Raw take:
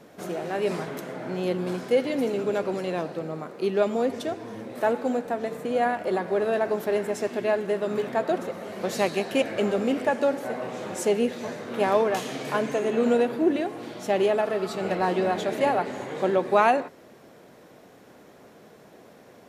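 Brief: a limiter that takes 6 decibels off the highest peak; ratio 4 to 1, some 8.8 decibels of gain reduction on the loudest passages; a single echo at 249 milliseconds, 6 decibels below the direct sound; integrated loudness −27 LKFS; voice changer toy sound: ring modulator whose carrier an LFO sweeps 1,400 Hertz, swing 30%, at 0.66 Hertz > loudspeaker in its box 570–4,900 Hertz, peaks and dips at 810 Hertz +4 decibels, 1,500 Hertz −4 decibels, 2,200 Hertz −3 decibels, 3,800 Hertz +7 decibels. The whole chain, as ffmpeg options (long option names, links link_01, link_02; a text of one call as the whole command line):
ffmpeg -i in.wav -af "acompressor=threshold=-26dB:ratio=4,alimiter=limit=-21.5dB:level=0:latency=1,aecho=1:1:249:0.501,aeval=exprs='val(0)*sin(2*PI*1400*n/s+1400*0.3/0.66*sin(2*PI*0.66*n/s))':channel_layout=same,highpass=570,equalizer=frequency=810:width_type=q:width=4:gain=4,equalizer=frequency=1500:width_type=q:width=4:gain=-4,equalizer=frequency=2200:width_type=q:width=4:gain=-3,equalizer=frequency=3800:width_type=q:width=4:gain=7,lowpass=frequency=4900:width=0.5412,lowpass=frequency=4900:width=1.3066,volume=7dB" out.wav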